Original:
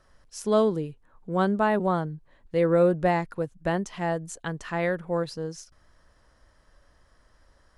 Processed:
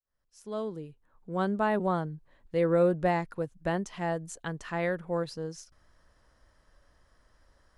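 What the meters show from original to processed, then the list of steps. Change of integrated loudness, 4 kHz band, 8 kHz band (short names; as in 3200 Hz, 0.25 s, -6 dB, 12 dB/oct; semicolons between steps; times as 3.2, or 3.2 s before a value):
-4.5 dB, -5.0 dB, -5.5 dB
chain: opening faded in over 1.78 s; gain -3.5 dB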